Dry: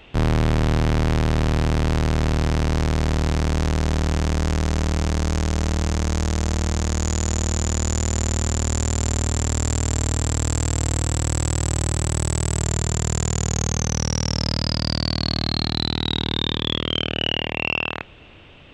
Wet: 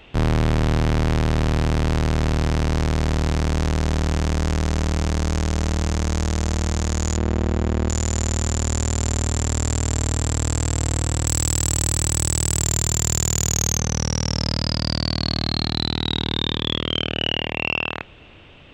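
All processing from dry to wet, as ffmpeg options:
ffmpeg -i in.wav -filter_complex "[0:a]asettb=1/sr,asplit=3[link_01][link_02][link_03];[link_01]atrim=end=7.174[link_04];[link_02]atrim=start=7.17:end=7.89,asetpts=PTS-STARTPTS,afade=type=in:duration=0.004:curve=qsin,afade=type=out:start_time=0.716:duration=0.004:curve=qsin,lowpass=2600,equalizer=frequency=320:width=0.78:gain=6.5[link_05];[link_03]atrim=start=7.886[link_06];[link_04][link_05]acrossfade=duration=0.004:curve1=hsin:curve2=qsin[link_07];[link_07][link_06]acrossfade=duration=0.004:curve1=qsin:curve2=hsin,asettb=1/sr,asplit=3[link_08][link_09][link_10];[link_08]atrim=end=11.264[link_11];[link_09]atrim=start=11.26:end=13.79,asetpts=PTS-STARTPTS,afade=type=in:duration=0.004:curve=qsin,afade=type=out:start_time=2.526:duration=0.004:curve=qsin,highshelf=frequency=2600:gain=8.5,aeval=exprs='clip(val(0),-1,0.282)':channel_layout=same[link_12];[link_10]atrim=start=13.786[link_13];[link_11][link_12]acrossfade=duration=0.004:curve1=hsin:curve2=qsin[link_14];[link_14][link_13]acrossfade=duration=0.004:curve1=qsin:curve2=hsin" out.wav

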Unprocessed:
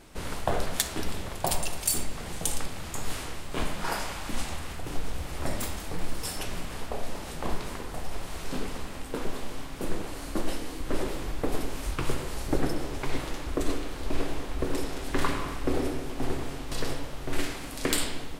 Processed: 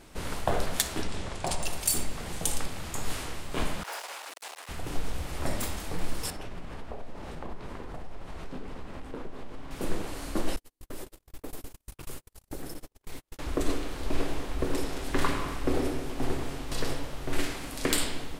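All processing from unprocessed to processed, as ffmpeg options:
ffmpeg -i in.wav -filter_complex "[0:a]asettb=1/sr,asplit=3[link_01][link_02][link_03];[link_01]atrim=end=1.024[link_04];[link_02]atrim=start=1.02:end=1.65,asetpts=PTS-STARTPTS,afade=type=in:duration=0.004:curve=qsin,afade=type=out:start_time=0.626:duration=0.004:curve=qsin,lowpass=frequency=9100:width=0.5412,lowpass=frequency=9100:width=1.3066,acompressor=threshold=-25dB:ratio=2:attack=3.2:release=140:knee=1:detection=peak,aeval=exprs='0.106*(abs(mod(val(0)/0.106+3,4)-2)-1)':channel_layout=same[link_05];[link_03]atrim=start=1.646[link_06];[link_04][link_05]acrossfade=duration=0.004:curve1=hsin:curve2=qsin[link_07];[link_07][link_06]acrossfade=duration=0.004:curve1=qsin:curve2=hsin,asettb=1/sr,asplit=3[link_08][link_09][link_10];[link_08]atrim=end=3.834[link_11];[link_09]atrim=start=3.83:end=4.69,asetpts=PTS-STARTPTS,afade=type=in:duration=0.004:curve=qsin,afade=type=out:start_time=0.856:duration=0.004:curve=qsin,asoftclip=type=hard:threshold=-34dB,highpass=frequency=470:width=0.5412,highpass=frequency=470:width=1.3066[link_12];[link_10]atrim=start=4.686[link_13];[link_11][link_12]acrossfade=duration=0.004:curve1=hsin:curve2=qsin[link_14];[link_14][link_13]acrossfade=duration=0.004:curve1=qsin:curve2=hsin,asettb=1/sr,asplit=3[link_15][link_16][link_17];[link_15]atrim=end=6.304[link_18];[link_16]atrim=start=6.3:end=9.71,asetpts=PTS-STARTPTS,afade=type=in:duration=0.004:curve=qsin,afade=type=out:start_time=3.406:duration=0.004:curve=qsin,lowpass=frequency=1600:poles=1,acompressor=threshold=-34dB:ratio=3:attack=3.2:release=140:knee=1:detection=peak[link_19];[link_17]atrim=start=9.706[link_20];[link_18][link_19]acrossfade=duration=0.004:curve1=hsin:curve2=qsin[link_21];[link_21][link_20]acrossfade=duration=0.004:curve1=qsin:curve2=hsin,asettb=1/sr,asplit=3[link_22][link_23][link_24];[link_22]atrim=end=10.564[link_25];[link_23]atrim=start=10.56:end=13.39,asetpts=PTS-STARTPTS,afade=type=in:duration=0.004:curve=qsin,afade=type=out:start_time=2.826:duration=0.004:curve=qsin,agate=range=-53dB:threshold=-27dB:ratio=16:release=100:detection=peak,aemphasis=mode=production:type=50fm,acompressor=threshold=-39dB:ratio=2.5:attack=3.2:release=140:knee=1:detection=peak[link_26];[link_24]atrim=start=13.386[link_27];[link_25][link_26]acrossfade=duration=0.004:curve1=hsin:curve2=qsin[link_28];[link_28][link_27]acrossfade=duration=0.004:curve1=qsin:curve2=hsin" out.wav

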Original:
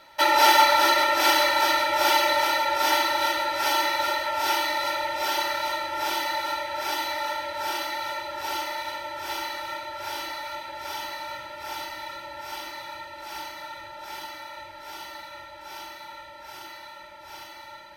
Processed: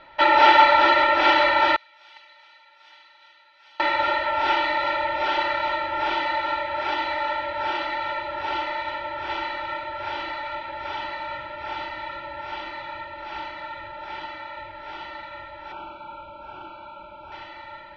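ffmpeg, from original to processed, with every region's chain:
ffmpeg -i in.wav -filter_complex "[0:a]asettb=1/sr,asplit=3[link_01][link_02][link_03];[link_01]atrim=end=1.764[link_04];[link_02]atrim=start=1.76:end=3.8,asetpts=PTS-STARTPTS,afade=type=in:duration=0.004:curve=qsin,afade=type=out:start_time=2.036:duration=0.004:curve=qsin,agate=range=-18dB:threshold=-17dB:ratio=16:release=100:detection=peak,aderivative[link_05];[link_03]atrim=start=3.796[link_06];[link_04][link_05]acrossfade=duration=0.004:curve1=hsin:curve2=qsin[link_07];[link_07][link_06]acrossfade=duration=0.004:curve1=qsin:curve2=hsin,asettb=1/sr,asplit=3[link_08][link_09][link_10];[link_08]atrim=end=15.724[link_11];[link_09]atrim=start=15.72:end=17.32,asetpts=PTS-STARTPTS,afade=type=in:duration=0.004:curve=qsin,afade=type=out:start_time=1.596:duration=0.004:curve=qsin,acrossover=split=2600[link_12][link_13];[link_13]acompressor=threshold=-58dB:ratio=4:attack=1:release=60[link_14];[link_12][link_14]amix=inputs=2:normalize=0,asuperstop=centerf=1900:order=8:qfactor=3,equalizer=frequency=220:width=1.3:gain=4[link_15];[link_10]atrim=start=17.316[link_16];[link_11][link_15]acrossfade=duration=0.004:curve1=hsin:curve2=qsin[link_17];[link_17][link_16]acrossfade=duration=0.004:curve1=qsin:curve2=hsin,lowpass=frequency=3300:width=0.5412,lowpass=frequency=3300:width=1.3066,lowshelf=frequency=69:gain=8,volume=3.5dB" out.wav

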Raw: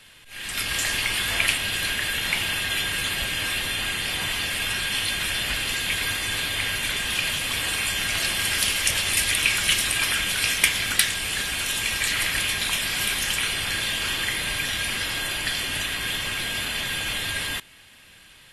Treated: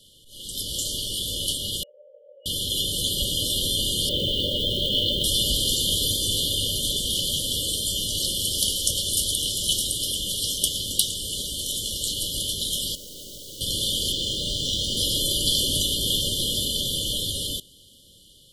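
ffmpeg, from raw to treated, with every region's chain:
ffmpeg -i in.wav -filter_complex "[0:a]asettb=1/sr,asplit=3[link_01][link_02][link_03];[link_01]atrim=end=1.834[link_04];[link_02]atrim=start=1.83:end=2.46,asetpts=PTS-STARTPTS,afade=type=in:duration=0.004:curve=qsin,afade=type=out:start_time=0.626:duration=0.004:curve=qsin,asuperpass=centerf=820:order=12:qfactor=1,tiltshelf=frequency=680:gain=-7.5[link_05];[link_03]atrim=start=2.456[link_06];[link_04][link_05]acrossfade=duration=0.004:curve1=hsin:curve2=qsin[link_07];[link_07][link_06]acrossfade=duration=0.004:curve1=qsin:curve2=hsin,asettb=1/sr,asplit=3[link_08][link_09][link_10];[link_08]atrim=end=4.094[link_11];[link_09]atrim=start=4.09:end=5.24,asetpts=PTS-STARTPTS,afade=type=in:duration=0.004:curve=qsin,afade=type=out:start_time=1.146:duration=0.004:curve=qsin,lowpass=frequency=3300:width=0.5412,lowpass=frequency=3300:width=1.3066,equalizer=frequency=1000:width_type=o:width=2:gain=11.5,acrusher=bits=6:mode=log:mix=0:aa=0.000001[link_12];[link_10]atrim=start=5.236[link_13];[link_11][link_12]acrossfade=duration=0.004:curve1=hsin:curve2=qsin[link_14];[link_14][link_13]acrossfade=duration=0.004:curve1=qsin:curve2=hsin,asettb=1/sr,asplit=3[link_15][link_16][link_17];[link_15]atrim=end=12.954[link_18];[link_16]atrim=start=12.95:end=13.61,asetpts=PTS-STARTPTS,afade=type=in:duration=0.004:curve=qsin,afade=type=out:start_time=0.656:duration=0.004:curve=qsin,adynamicsmooth=sensitivity=6:basefreq=1700,aeval=exprs='(tanh(25.1*val(0)+0.15)-tanh(0.15))/25.1':channel_layout=same,aeval=exprs='0.0188*(abs(mod(val(0)/0.0188+3,4)-2)-1)':channel_layout=same[link_19];[link_17]atrim=start=13.606[link_20];[link_18][link_19]acrossfade=duration=0.004:curve1=hsin:curve2=qsin[link_21];[link_21][link_20]acrossfade=duration=0.004:curve1=qsin:curve2=hsin,asettb=1/sr,asplit=3[link_22][link_23][link_24];[link_22]atrim=end=14.124[link_25];[link_23]atrim=start=14.12:end=14.97,asetpts=PTS-STARTPTS,afade=type=in:duration=0.004:curve=qsin,afade=type=out:start_time=0.846:duration=0.004:curve=qsin,lowpass=frequency=7500:width=0.5412,lowpass=frequency=7500:width=1.3066,aeval=exprs='sgn(val(0))*max(abs(val(0))-0.00841,0)':channel_layout=same[link_26];[link_24]atrim=start=14.966[link_27];[link_25][link_26]acrossfade=duration=0.004:curve1=hsin:curve2=qsin[link_28];[link_28][link_27]acrossfade=duration=0.004:curve1=qsin:curve2=hsin,afftfilt=real='re*(1-between(b*sr/4096,610,2900))':imag='im*(1-between(b*sr/4096,610,2900))':win_size=4096:overlap=0.75,dynaudnorm=framelen=710:gausssize=9:maxgain=11.5dB,volume=-1dB" out.wav

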